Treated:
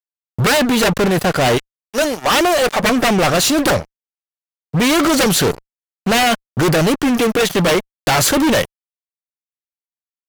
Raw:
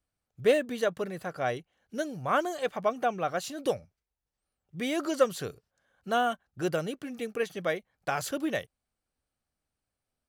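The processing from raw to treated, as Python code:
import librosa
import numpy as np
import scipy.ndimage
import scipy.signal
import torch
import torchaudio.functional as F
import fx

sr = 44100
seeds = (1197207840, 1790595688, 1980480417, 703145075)

y = fx.highpass(x, sr, hz=fx.line((1.57, 830.0), (2.82, 260.0)), slope=12, at=(1.57, 2.82), fade=0.02)
y = fx.cheby_harmonics(y, sr, harmonics=(5, 7), levels_db=(-27, -7), full_scale_db=-10.0)
y = fx.wow_flutter(y, sr, seeds[0], rate_hz=2.1, depth_cents=26.0)
y = fx.fuzz(y, sr, gain_db=38.0, gate_db=-46.0)
y = y * 10.0 ** (1.0 / 20.0)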